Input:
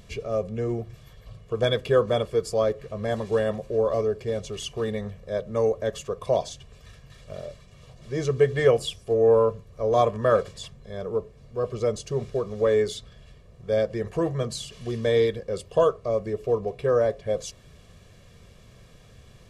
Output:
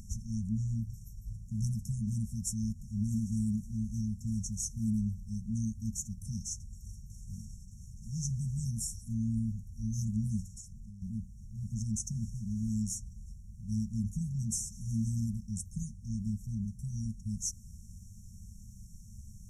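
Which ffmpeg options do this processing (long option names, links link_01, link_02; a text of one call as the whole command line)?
ffmpeg -i in.wav -filter_complex "[0:a]asettb=1/sr,asplit=3[link_01][link_02][link_03];[link_01]atrim=end=10.464[link_04];[link_02]atrim=start=10.46:end=11.02,asetpts=PTS-STARTPTS,afade=type=in:duration=0.004:curve=qsin,afade=type=out:start_time=0.556:duration=0.004:curve=qsin,acompressor=threshold=-44dB:ratio=4:attack=3.2:release=140:knee=1:detection=peak[link_05];[link_03]atrim=start=11.016[link_06];[link_04][link_05]acrossfade=duration=0.004:curve1=hsin:curve2=qsin[link_07];[link_07][link_06]acrossfade=duration=0.004:curve1=qsin:curve2=hsin,afftfilt=real='re*(1-between(b*sr/4096,230,5300))':imag='im*(1-between(b*sr/4096,230,5300))':win_size=4096:overlap=0.75,equalizer=frequency=140:width_type=o:width=0.47:gain=-10,volume=4.5dB" out.wav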